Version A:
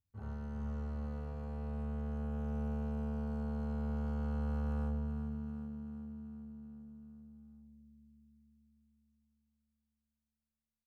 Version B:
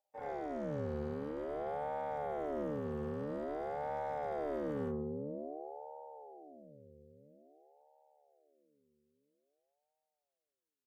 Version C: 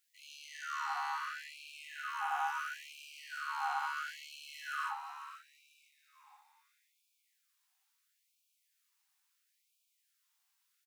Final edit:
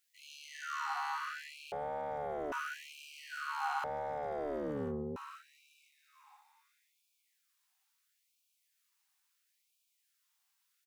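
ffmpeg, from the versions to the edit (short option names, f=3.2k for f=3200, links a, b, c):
-filter_complex "[1:a]asplit=2[a][b];[2:a]asplit=3[c][d][e];[c]atrim=end=1.722[f];[a]atrim=start=1.718:end=2.522[g];[d]atrim=start=2.518:end=3.842[h];[b]atrim=start=3.838:end=5.162[i];[e]atrim=start=5.158[j];[f][g]acrossfade=d=0.004:c1=hsin:c2=hsin[k];[k][h]acrossfade=d=0.004:c1=hsin:c2=hsin[l];[l][i]acrossfade=d=0.004:c1=hsin:c2=hsin[m];[m][j]acrossfade=d=0.004:c1=hsin:c2=hsin"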